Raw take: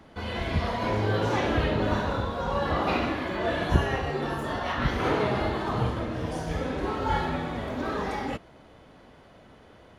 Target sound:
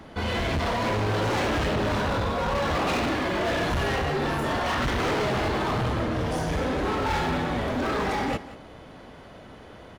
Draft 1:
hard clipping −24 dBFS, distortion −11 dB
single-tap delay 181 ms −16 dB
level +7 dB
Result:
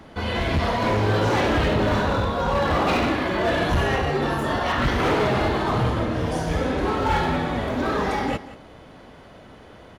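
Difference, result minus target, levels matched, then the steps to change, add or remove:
hard clipping: distortion −5 dB
change: hard clipping −30.5 dBFS, distortion −6 dB

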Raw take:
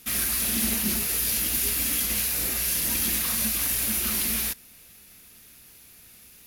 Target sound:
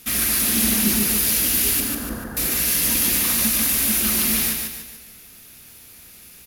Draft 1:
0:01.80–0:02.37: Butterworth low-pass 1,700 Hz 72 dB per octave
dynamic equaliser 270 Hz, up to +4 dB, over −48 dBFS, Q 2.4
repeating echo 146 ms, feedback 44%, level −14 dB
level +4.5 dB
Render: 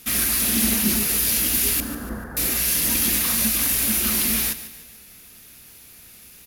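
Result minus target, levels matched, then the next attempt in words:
echo-to-direct −9.5 dB
0:01.80–0:02.37: Butterworth low-pass 1,700 Hz 72 dB per octave
dynamic equaliser 270 Hz, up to +4 dB, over −48 dBFS, Q 2.4
repeating echo 146 ms, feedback 44%, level −4.5 dB
level +4.5 dB

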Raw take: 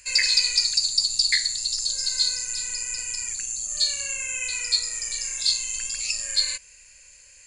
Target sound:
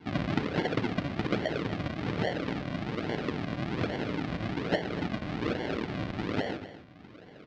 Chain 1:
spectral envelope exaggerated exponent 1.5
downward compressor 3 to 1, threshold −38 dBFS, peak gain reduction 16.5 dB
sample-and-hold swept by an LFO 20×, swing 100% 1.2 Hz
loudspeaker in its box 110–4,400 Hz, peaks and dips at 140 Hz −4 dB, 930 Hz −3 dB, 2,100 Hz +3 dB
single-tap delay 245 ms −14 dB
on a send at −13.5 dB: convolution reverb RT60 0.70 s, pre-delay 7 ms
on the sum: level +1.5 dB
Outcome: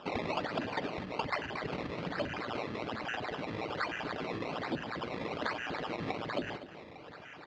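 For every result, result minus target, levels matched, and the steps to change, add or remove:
sample-and-hold swept by an LFO: distortion −12 dB; downward compressor: peak gain reduction +6.5 dB
change: sample-and-hold swept by an LFO 69×, swing 100% 1.2 Hz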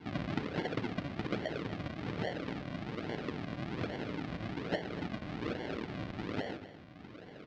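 downward compressor: peak gain reduction +6.5 dB
change: downward compressor 3 to 1, threshold −28.5 dBFS, peak gain reduction 10.5 dB

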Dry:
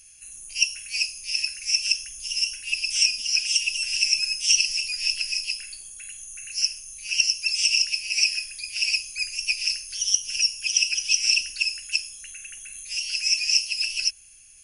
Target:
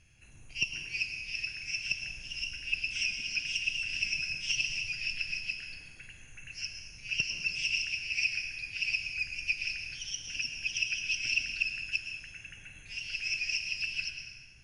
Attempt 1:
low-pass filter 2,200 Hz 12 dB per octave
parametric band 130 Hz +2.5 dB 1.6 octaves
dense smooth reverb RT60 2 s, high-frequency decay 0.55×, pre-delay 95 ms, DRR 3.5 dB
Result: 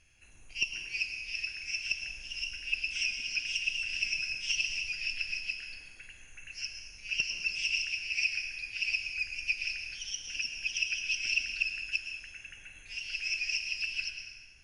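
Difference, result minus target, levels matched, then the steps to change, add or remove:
125 Hz band −7.0 dB
change: parametric band 130 Hz +13.5 dB 1.6 octaves

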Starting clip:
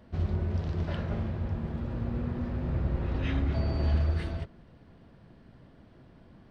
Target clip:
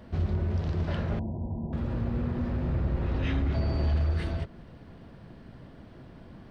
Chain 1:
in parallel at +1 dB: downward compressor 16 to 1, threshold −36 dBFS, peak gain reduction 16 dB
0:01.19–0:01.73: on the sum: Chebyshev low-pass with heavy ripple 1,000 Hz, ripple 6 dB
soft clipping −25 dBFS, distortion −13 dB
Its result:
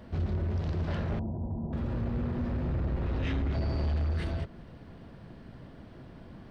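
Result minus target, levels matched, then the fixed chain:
soft clipping: distortion +9 dB
in parallel at +1 dB: downward compressor 16 to 1, threshold −36 dBFS, peak gain reduction 16 dB
0:01.19–0:01.73: on the sum: Chebyshev low-pass with heavy ripple 1,000 Hz, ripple 6 dB
soft clipping −18 dBFS, distortion −22 dB

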